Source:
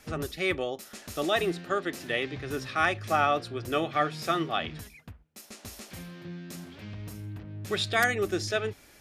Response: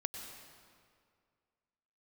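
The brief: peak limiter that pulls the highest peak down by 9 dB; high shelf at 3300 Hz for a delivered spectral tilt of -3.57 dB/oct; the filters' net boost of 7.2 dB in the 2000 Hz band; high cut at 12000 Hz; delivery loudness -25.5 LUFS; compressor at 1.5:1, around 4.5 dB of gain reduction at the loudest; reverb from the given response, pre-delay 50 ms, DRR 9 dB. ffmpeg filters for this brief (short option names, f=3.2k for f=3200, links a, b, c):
-filter_complex "[0:a]lowpass=12k,equalizer=f=2k:t=o:g=7.5,highshelf=f=3.3k:g=5,acompressor=threshold=-26dB:ratio=1.5,alimiter=limit=-19dB:level=0:latency=1,asplit=2[a][b];[1:a]atrim=start_sample=2205,adelay=50[c];[b][c]afir=irnorm=-1:irlink=0,volume=-9dB[d];[a][d]amix=inputs=2:normalize=0,volume=5.5dB"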